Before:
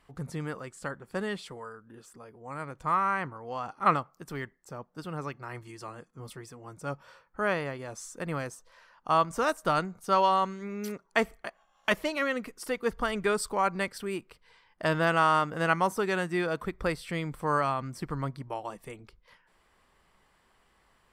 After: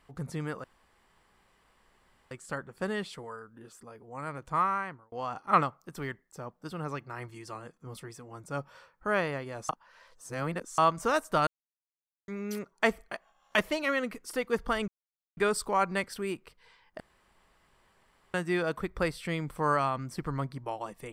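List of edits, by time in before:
0.64 insert room tone 1.67 s
2.91–3.45 fade out
8.02–9.11 reverse
9.8–10.61 mute
13.21 insert silence 0.49 s
14.84–16.18 room tone

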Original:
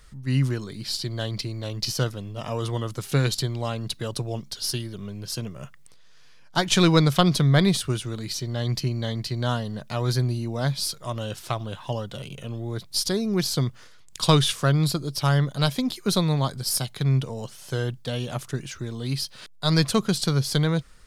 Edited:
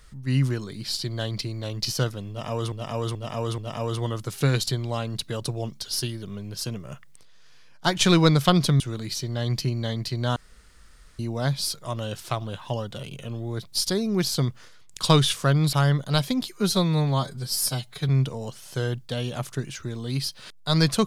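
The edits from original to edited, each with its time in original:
2.29–2.72 loop, 4 plays
7.51–7.99 cut
9.55–10.38 room tone
14.92–15.21 cut
16.01–17.05 stretch 1.5×

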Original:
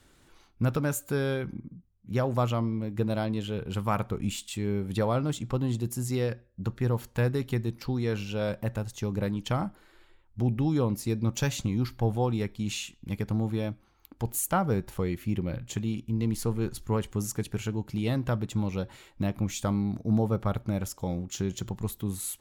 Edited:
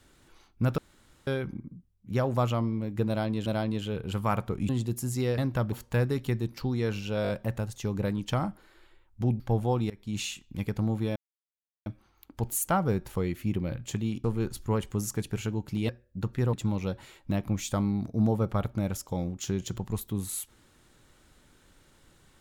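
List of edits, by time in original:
0.78–1.27 room tone
3.08–3.46 loop, 2 plays
4.31–5.63 cut
6.32–6.96 swap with 18.1–18.44
8.47 stutter 0.02 s, 4 plays
10.58–11.92 cut
12.42–12.7 fade in, from -22 dB
13.68 insert silence 0.70 s
16.06–16.45 cut

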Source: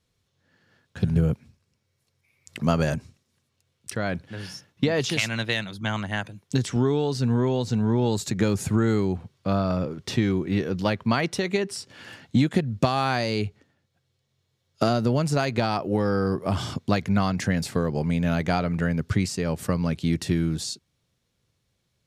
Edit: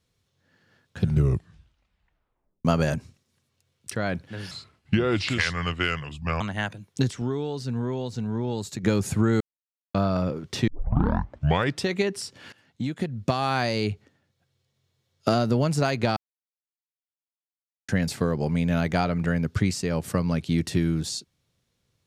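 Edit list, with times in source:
1.02 tape stop 1.63 s
4.51–5.95 speed 76%
6.65–8.38 gain -6 dB
8.95–9.49 mute
10.22 tape start 1.21 s
12.07–13.17 fade in linear, from -22 dB
15.71–17.43 mute

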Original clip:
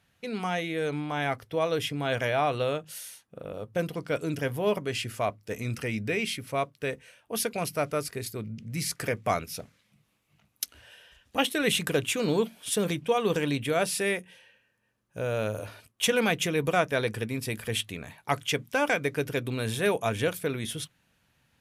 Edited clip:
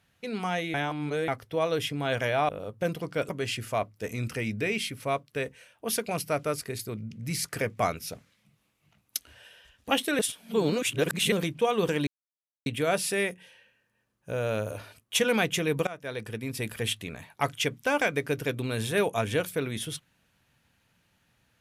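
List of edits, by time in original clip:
0.74–1.28 reverse
2.49–3.43 cut
4.23–4.76 cut
11.66–12.79 reverse
13.54 insert silence 0.59 s
16.75–17.53 fade in, from -20 dB

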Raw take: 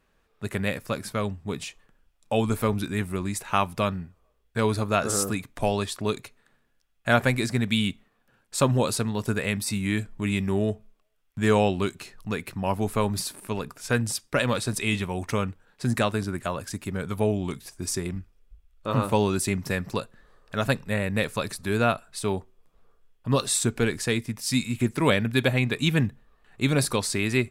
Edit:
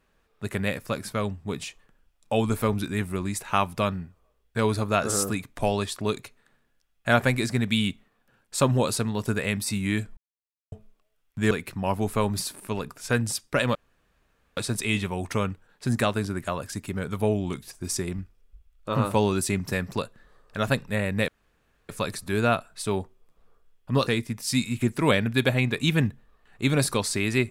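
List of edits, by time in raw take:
10.17–10.72 mute
11.51–12.31 cut
14.55 insert room tone 0.82 s
21.26 insert room tone 0.61 s
23.44–24.06 cut

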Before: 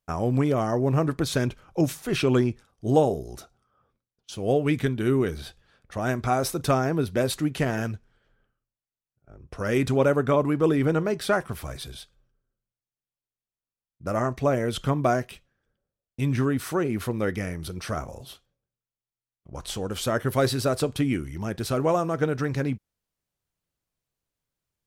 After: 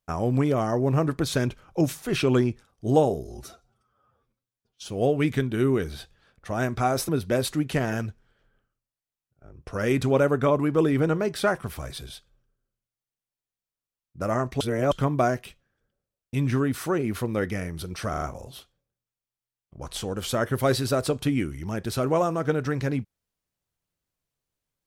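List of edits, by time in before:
3.25–4.32 stretch 1.5×
6.55–6.94 cut
14.46–14.77 reverse
17.95 stutter 0.04 s, 4 plays

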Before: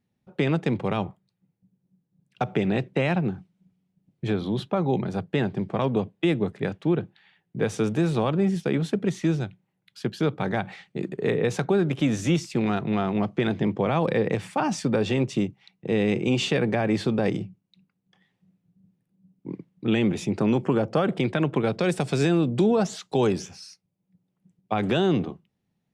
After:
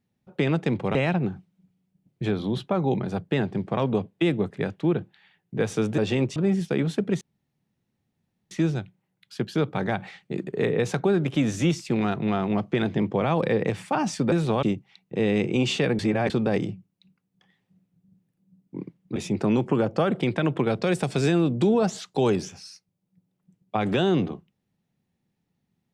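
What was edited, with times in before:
0.95–2.97 cut
8–8.31 swap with 14.97–15.35
9.16 insert room tone 1.30 s
16.71–17.02 reverse
19.88–20.13 cut

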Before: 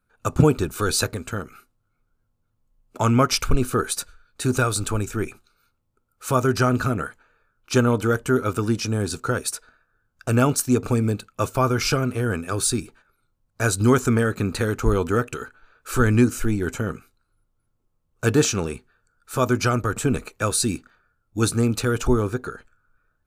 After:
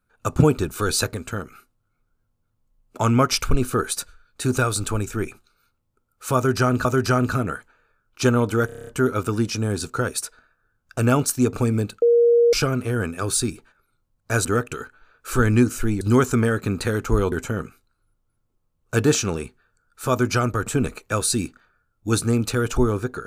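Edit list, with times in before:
6.36–6.85 loop, 2 plays
8.17 stutter 0.03 s, 8 plays
11.32–11.83 bleep 472 Hz -12 dBFS
13.75–15.06 move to 16.62

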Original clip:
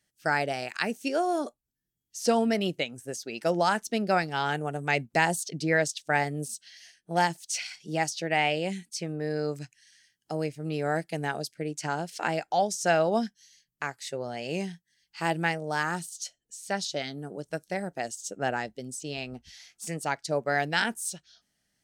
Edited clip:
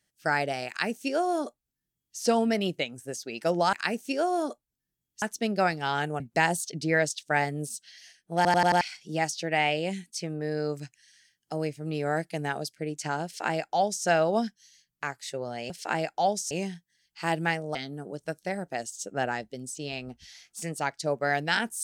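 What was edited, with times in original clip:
0.69–2.18 copy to 3.73
4.71–4.99 cut
7.15 stutter in place 0.09 s, 5 plays
12.04–12.85 copy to 14.49
15.73–17 cut

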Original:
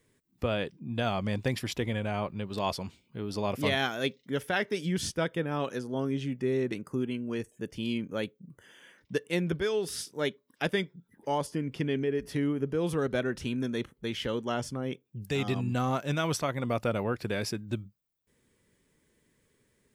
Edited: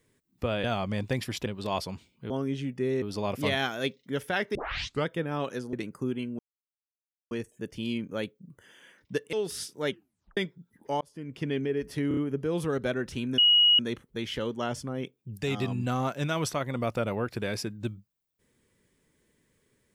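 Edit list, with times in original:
0.64–0.99 cut
1.81–2.38 cut
4.75 tape start 0.51 s
5.93–6.65 move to 3.22
7.31 insert silence 0.92 s
9.33–9.71 cut
10.27 tape stop 0.48 s
11.39–11.89 fade in
12.46 stutter 0.03 s, 4 plays
13.67 add tone 2900 Hz -16.5 dBFS 0.41 s

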